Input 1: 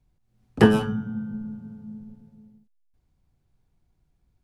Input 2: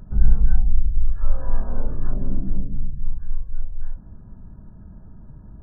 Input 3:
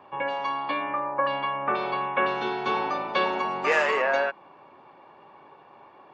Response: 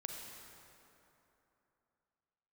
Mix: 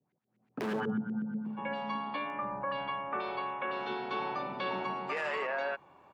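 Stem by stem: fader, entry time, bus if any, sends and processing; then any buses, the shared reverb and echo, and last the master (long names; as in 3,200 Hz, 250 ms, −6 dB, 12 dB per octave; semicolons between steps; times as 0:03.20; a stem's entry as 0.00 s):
−4.0 dB, 0.00 s, no send, high-shelf EQ 3,100 Hz +9 dB; auto-filter low-pass saw up 8.2 Hz 350–2,500 Hz; hard clipping −18.5 dBFS, distortion −3 dB
−12.5 dB, 2.30 s, no send, flat-topped bell 4,600 Hz +12 dB
−8.0 dB, 1.45 s, no send, parametric band 6,400 Hz −11.5 dB 0.35 octaves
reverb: not used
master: high-pass filter 160 Hz 24 dB per octave; high-shelf EQ 6,900 Hz +7 dB; brickwall limiter −25 dBFS, peak gain reduction 10 dB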